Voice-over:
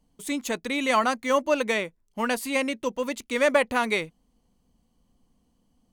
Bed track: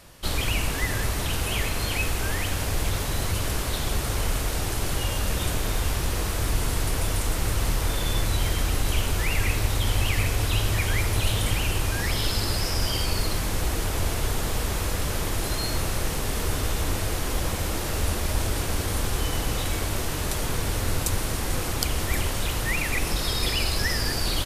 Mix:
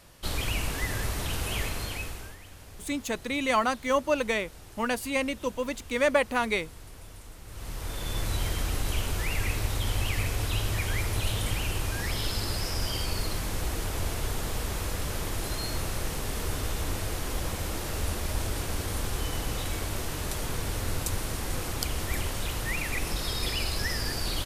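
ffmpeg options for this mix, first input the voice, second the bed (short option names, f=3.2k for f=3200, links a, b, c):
-filter_complex "[0:a]adelay=2600,volume=-2.5dB[a];[1:a]volume=11.5dB,afade=t=out:st=1.63:d=0.74:silence=0.149624,afade=t=in:st=7.46:d=0.86:silence=0.158489[b];[a][b]amix=inputs=2:normalize=0"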